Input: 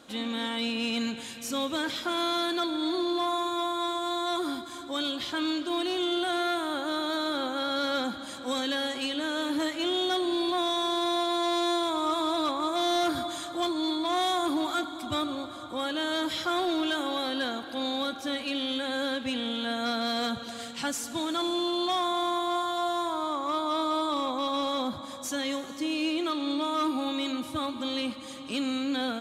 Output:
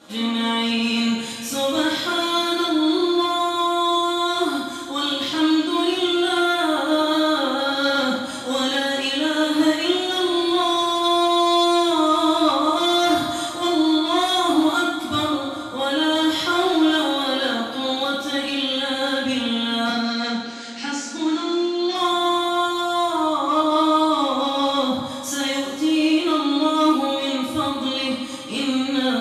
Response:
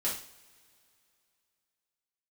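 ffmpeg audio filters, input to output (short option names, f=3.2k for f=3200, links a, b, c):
-filter_complex "[0:a]asettb=1/sr,asplit=3[a][b][c];[a]atrim=end=19.894[d];[b]atrim=start=19.89:end=21.95,asetpts=PTS-STARTPTS,afade=t=in:d=0.004:c=qsin,afade=t=out:st=2.056:d=0.004:c=qsin,highpass=f=210:w=0.5412,highpass=f=210:w=1.3066,equalizer=f=620:t=q:w=4:g=-10,equalizer=f=1.1k:t=q:w=4:g=-10,equalizer=f=3.4k:t=q:w=4:g=-8,lowpass=f=6.3k:w=0.5412,lowpass=f=6.3k:w=1.3066[e];[c]atrim=start=21.946[f];[d][e]acrossfade=d=0.004:c1=hsin:c2=qsin[g];[g][f]acrossfade=d=0.004:c1=qsin:c2=hsin[h];[1:a]atrim=start_sample=2205,asetrate=28665,aresample=44100[i];[h][i]afir=irnorm=-1:irlink=0"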